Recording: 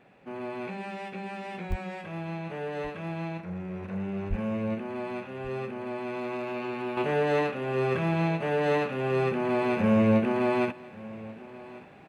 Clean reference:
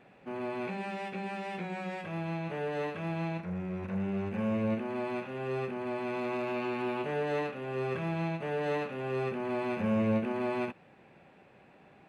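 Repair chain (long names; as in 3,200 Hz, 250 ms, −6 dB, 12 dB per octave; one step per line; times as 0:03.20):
0:01.69–0:01.81: high-pass filter 140 Hz 24 dB per octave
0:04.29–0:04.41: high-pass filter 140 Hz 24 dB per octave
repair the gap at 0:01.72, 1.5 ms
echo removal 1,136 ms −19.5 dB
0:06.97: level correction −6.5 dB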